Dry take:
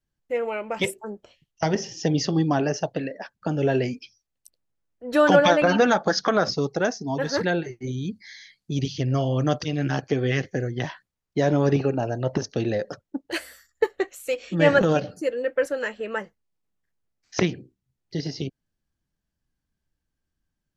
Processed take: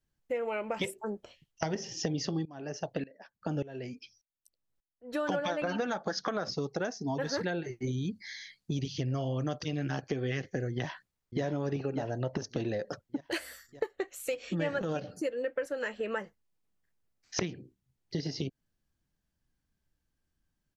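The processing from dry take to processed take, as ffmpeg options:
ffmpeg -i in.wav -filter_complex "[0:a]asettb=1/sr,asplit=3[link_01][link_02][link_03];[link_01]atrim=end=2.454[link_04];[link_02]atrim=start=2.45:end=5.29,asetpts=PTS-STARTPTS,afade=type=in:duration=0.004:curve=qsin,afade=type=out:start_time=2.836:duration=0.004:curve=qsin,aeval=exprs='val(0)*pow(10,-23*if(lt(mod(-1.7*n/s,1),2*abs(-1.7)/1000),1-mod(-1.7*n/s,1)/(2*abs(-1.7)/1000),(mod(-1.7*n/s,1)-2*abs(-1.7)/1000)/(1-2*abs(-1.7)/1000))/20)':channel_layout=same[link_05];[link_03]atrim=start=5.286[link_06];[link_04][link_05]acrossfade=duration=0.004:curve1=hsin:curve2=qsin[link_07];[link_07][link_06]acrossfade=duration=0.004:curve1=qsin:curve2=hsin,asplit=2[link_08][link_09];[link_09]afade=type=in:start_time=10.73:duration=0.01,afade=type=out:start_time=11.43:duration=0.01,aecho=0:1:590|1180|1770|2360|2950:0.501187|0.200475|0.08019|0.032076|0.0128304[link_10];[link_08][link_10]amix=inputs=2:normalize=0,acompressor=threshold=-30dB:ratio=6" out.wav

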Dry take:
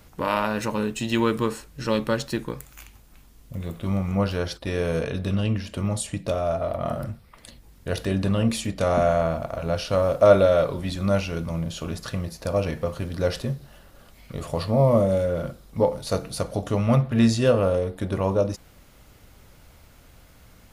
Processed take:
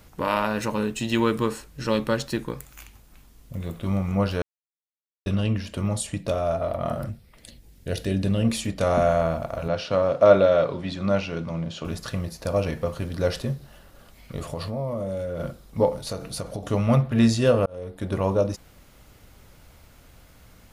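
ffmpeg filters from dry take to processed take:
ffmpeg -i in.wav -filter_complex "[0:a]asettb=1/sr,asplit=3[link_01][link_02][link_03];[link_01]atrim=end=7.094[link_04];[link_02]atrim=start=7.09:end=8.45,asetpts=PTS-STARTPTS,afade=type=in:duration=0.004:curve=qsin,afade=type=out:start_time=1.356:duration=0.004:curve=qsin,equalizer=frequency=1100:width_type=o:width=1:gain=-10.5[link_05];[link_03]atrim=start=8.446[link_06];[link_04][link_05]acrossfade=duration=0.004:curve1=hsin:curve2=qsin[link_07];[link_07][link_06]acrossfade=duration=0.004:curve1=qsin:curve2=hsin,asettb=1/sr,asplit=3[link_08][link_09][link_10];[link_08]atrim=end=9.684[link_11];[link_09]atrim=start=9.68:end=11.85,asetpts=PTS-STARTPTS,afade=type=in:duration=0.004:curve=qsin,afade=type=out:start_time=2.166:duration=0.004:curve=qsin,highpass=120,lowpass=4800[link_12];[link_10]atrim=start=11.846[link_13];[link_11][link_12]acrossfade=duration=0.004:curve1=hsin:curve2=qsin[link_14];[link_14][link_13]acrossfade=duration=0.004:curve1=qsin:curve2=hsin,asettb=1/sr,asplit=3[link_15][link_16][link_17];[link_15]atrim=end=14.514[link_18];[link_16]atrim=start=14.51:end=15.4,asetpts=PTS-STARTPTS,afade=type=in:duration=0.004:curve=qsin,afade=type=out:start_time=0.886:duration=0.004:curve=qsin,acompressor=threshold=-27dB:ratio=4:attack=3.2:release=140:knee=1:detection=peak[link_19];[link_17]atrim=start=15.396[link_20];[link_18][link_19]acrossfade=duration=0.004:curve1=hsin:curve2=qsin[link_21];[link_21][link_20]acrossfade=duration=0.004:curve1=qsin:curve2=hsin,asettb=1/sr,asplit=3[link_22][link_23][link_24];[link_22]atrim=end=16.004[link_25];[link_23]atrim=start=16:end=16.69,asetpts=PTS-STARTPTS,afade=type=in:duration=0.004:curve=qsin,afade=type=out:start_time=0.686:duration=0.004:curve=qsin,acompressor=threshold=-26dB:ratio=6:attack=3.2:release=140:knee=1:detection=peak[link_26];[link_24]atrim=start=16.686[link_27];[link_25][link_26]acrossfade=duration=0.004:curve1=hsin:curve2=qsin[link_28];[link_28][link_27]acrossfade=duration=0.004:curve1=qsin:curve2=hsin,asplit=4[link_29][link_30][link_31][link_32];[link_29]atrim=end=4.42,asetpts=PTS-STARTPTS,afade=type=out:start_time=4.416:duration=0.004:curve=hsin[link_33];[link_30]atrim=start=4.42:end=5.26,asetpts=PTS-STARTPTS,volume=0[link_34];[link_31]atrim=start=5.26:end=17.66,asetpts=PTS-STARTPTS,afade=type=in:duration=0.004:curve=hsin,afade=type=out:start_time=12.396:duration=0.004:curve=hsin[link_35];[link_32]atrim=start=17.66,asetpts=PTS-STARTPTS,afade=type=in:duration=0.48[link_36];[link_33][link_34][link_35][link_36]concat=n=4:v=0:a=1" out.wav

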